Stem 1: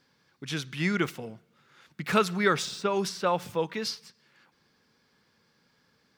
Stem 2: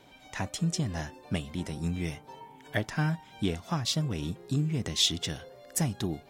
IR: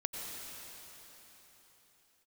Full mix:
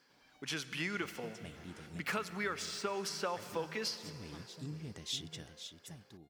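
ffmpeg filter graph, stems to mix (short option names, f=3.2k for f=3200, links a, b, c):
-filter_complex "[0:a]highpass=f=350:p=1,acompressor=threshold=-33dB:ratio=10,bandreject=f=3.7k:w=9.3,volume=-2dB,asplit=3[a][b][c];[b]volume=-11.5dB[d];[1:a]adelay=100,volume=-14dB,afade=t=out:st=5.52:d=0.21:silence=0.334965,asplit=2[e][f];[f]volume=-9.5dB[g];[c]apad=whole_len=282045[h];[e][h]sidechaincompress=threshold=-56dB:ratio=8:attack=16:release=202[i];[2:a]atrim=start_sample=2205[j];[d][j]afir=irnorm=-1:irlink=0[k];[g]aecho=0:1:513:1[l];[a][i][k][l]amix=inputs=4:normalize=0,lowshelf=f=140:g=-3"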